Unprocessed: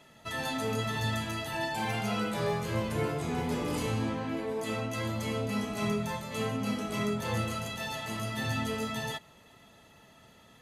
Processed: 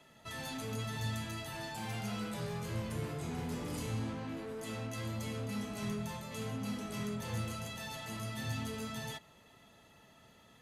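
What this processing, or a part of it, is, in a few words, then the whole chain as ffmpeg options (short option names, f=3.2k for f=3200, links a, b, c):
one-band saturation: -filter_complex "[0:a]acrossover=split=220|4400[a][b][c];[b]asoftclip=type=tanh:threshold=-38dB[d];[a][d][c]amix=inputs=3:normalize=0,volume=-4dB"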